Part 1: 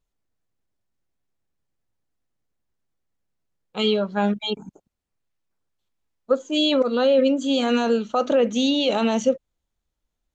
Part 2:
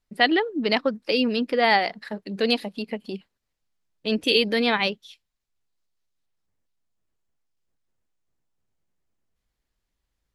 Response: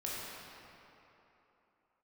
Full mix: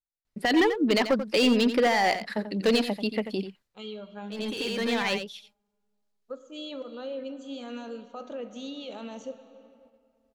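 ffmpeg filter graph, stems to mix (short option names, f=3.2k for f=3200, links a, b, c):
-filter_complex "[0:a]volume=-20dB,asplit=3[a][b][c];[b]volume=-11dB[d];[1:a]alimiter=limit=-14dB:level=0:latency=1:release=12,asoftclip=type=hard:threshold=-19.5dB,adelay=250,volume=2.5dB,asplit=2[e][f];[f]volume=-10.5dB[g];[c]apad=whole_len=467118[h];[e][h]sidechaincompress=threshold=-51dB:ratio=12:attack=9.6:release=850[i];[2:a]atrim=start_sample=2205[j];[d][j]afir=irnorm=-1:irlink=0[k];[g]aecho=0:1:88:1[l];[a][i][k][l]amix=inputs=4:normalize=0,agate=range=-6dB:threshold=-58dB:ratio=16:detection=peak"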